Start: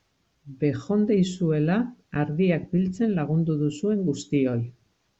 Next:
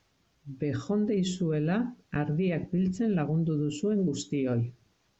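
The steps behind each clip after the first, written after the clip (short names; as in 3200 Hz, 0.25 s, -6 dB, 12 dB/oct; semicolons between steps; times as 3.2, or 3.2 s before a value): limiter -20.5 dBFS, peak gain reduction 9.5 dB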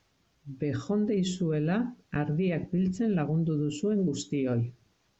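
nothing audible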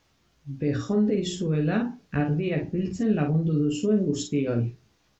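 early reflections 14 ms -4 dB, 51 ms -5.5 dB; gain +1.5 dB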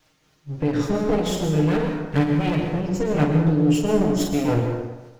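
minimum comb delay 6.5 ms; tremolo triangle 3.8 Hz, depth 50%; on a send at -4 dB: reverb RT60 1.1 s, pre-delay 0.103 s; on the sum: gain +7 dB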